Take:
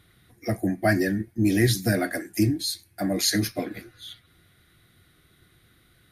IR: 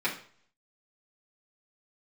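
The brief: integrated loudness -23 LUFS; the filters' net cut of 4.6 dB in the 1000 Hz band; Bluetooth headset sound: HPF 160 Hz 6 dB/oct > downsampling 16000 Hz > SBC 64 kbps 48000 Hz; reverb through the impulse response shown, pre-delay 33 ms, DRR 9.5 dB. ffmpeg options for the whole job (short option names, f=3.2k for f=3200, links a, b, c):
-filter_complex "[0:a]equalizer=f=1k:t=o:g=-8,asplit=2[a][b];[1:a]atrim=start_sample=2205,adelay=33[c];[b][c]afir=irnorm=-1:irlink=0,volume=-19dB[d];[a][d]amix=inputs=2:normalize=0,highpass=f=160:p=1,aresample=16000,aresample=44100,volume=4dB" -ar 48000 -c:a sbc -b:a 64k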